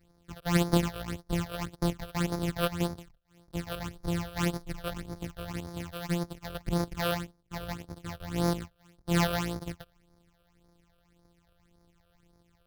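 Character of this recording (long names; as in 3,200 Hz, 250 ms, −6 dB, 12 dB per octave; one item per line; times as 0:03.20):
a buzz of ramps at a fixed pitch in blocks of 256 samples
phaser sweep stages 8, 1.8 Hz, lowest notch 260–2,800 Hz
AAC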